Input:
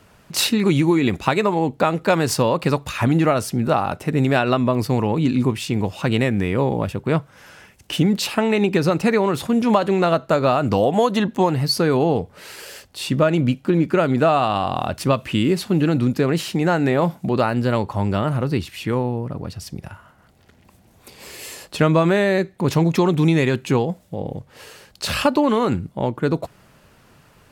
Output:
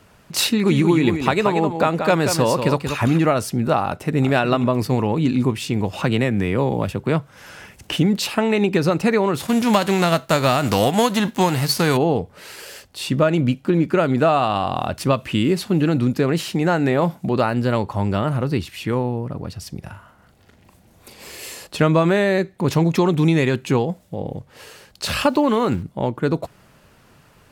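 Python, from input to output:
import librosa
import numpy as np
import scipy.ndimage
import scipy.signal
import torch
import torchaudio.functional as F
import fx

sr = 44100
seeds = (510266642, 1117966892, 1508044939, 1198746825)

y = fx.echo_single(x, sr, ms=183, db=-7.0, at=(0.67, 3.17), fade=0.02)
y = fx.echo_throw(y, sr, start_s=3.85, length_s=0.43, ms=370, feedback_pct=40, wet_db=-11.0)
y = fx.band_squash(y, sr, depth_pct=40, at=(5.93, 7.97))
y = fx.envelope_flatten(y, sr, power=0.6, at=(9.39, 11.96), fade=0.02)
y = fx.doubler(y, sr, ms=40.0, db=-7, at=(19.84, 21.67))
y = fx.sample_gate(y, sr, floor_db=-40.5, at=(25.19, 25.83))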